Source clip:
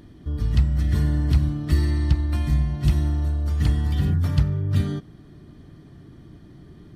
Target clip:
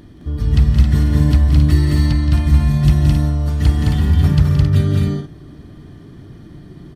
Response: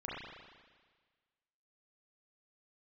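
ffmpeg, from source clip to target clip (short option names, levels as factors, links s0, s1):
-af "aecho=1:1:172|212.8|268.2:0.316|0.794|0.447,volume=1.78"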